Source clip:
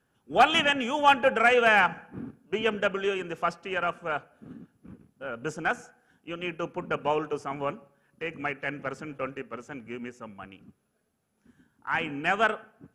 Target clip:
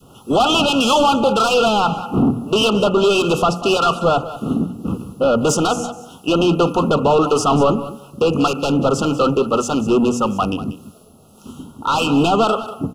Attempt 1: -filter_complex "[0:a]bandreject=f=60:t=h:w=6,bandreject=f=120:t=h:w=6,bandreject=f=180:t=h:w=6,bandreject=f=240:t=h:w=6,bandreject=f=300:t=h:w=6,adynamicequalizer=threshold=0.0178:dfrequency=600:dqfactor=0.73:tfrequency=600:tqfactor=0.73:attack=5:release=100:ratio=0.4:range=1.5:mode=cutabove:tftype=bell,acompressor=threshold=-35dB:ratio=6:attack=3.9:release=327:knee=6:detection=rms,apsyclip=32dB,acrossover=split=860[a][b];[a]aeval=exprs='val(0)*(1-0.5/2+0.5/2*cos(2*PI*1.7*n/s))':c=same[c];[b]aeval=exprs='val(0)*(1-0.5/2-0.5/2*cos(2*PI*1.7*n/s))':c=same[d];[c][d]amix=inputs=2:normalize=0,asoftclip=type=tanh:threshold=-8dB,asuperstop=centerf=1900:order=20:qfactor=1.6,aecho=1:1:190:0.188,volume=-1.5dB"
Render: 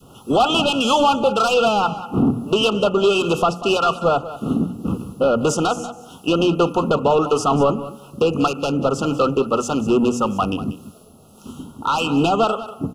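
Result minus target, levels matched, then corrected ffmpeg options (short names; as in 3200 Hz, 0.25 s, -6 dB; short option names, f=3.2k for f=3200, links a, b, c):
compressor: peak gain reduction +6 dB
-filter_complex "[0:a]bandreject=f=60:t=h:w=6,bandreject=f=120:t=h:w=6,bandreject=f=180:t=h:w=6,bandreject=f=240:t=h:w=6,bandreject=f=300:t=h:w=6,adynamicequalizer=threshold=0.0178:dfrequency=600:dqfactor=0.73:tfrequency=600:tqfactor=0.73:attack=5:release=100:ratio=0.4:range=1.5:mode=cutabove:tftype=bell,acompressor=threshold=-27.5dB:ratio=6:attack=3.9:release=327:knee=6:detection=rms,apsyclip=32dB,acrossover=split=860[a][b];[a]aeval=exprs='val(0)*(1-0.5/2+0.5/2*cos(2*PI*1.7*n/s))':c=same[c];[b]aeval=exprs='val(0)*(1-0.5/2-0.5/2*cos(2*PI*1.7*n/s))':c=same[d];[c][d]amix=inputs=2:normalize=0,asoftclip=type=tanh:threshold=-8dB,asuperstop=centerf=1900:order=20:qfactor=1.6,aecho=1:1:190:0.188,volume=-1.5dB"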